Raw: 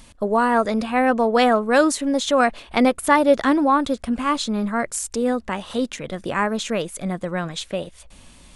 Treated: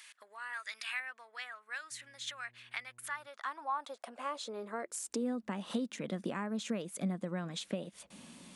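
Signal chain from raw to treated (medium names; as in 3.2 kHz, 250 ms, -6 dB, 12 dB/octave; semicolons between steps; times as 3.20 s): 0.53–1.00 s: tilt shelf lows -7 dB, about 1.4 kHz; compression 12:1, threshold -31 dBFS, peak gain reduction 21 dB; high-pass sweep 1.8 kHz -> 200 Hz, 2.90–5.50 s; 1.90–3.26 s: mains buzz 120 Hz, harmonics 9, -64 dBFS -9 dB/octave; trim -5.5 dB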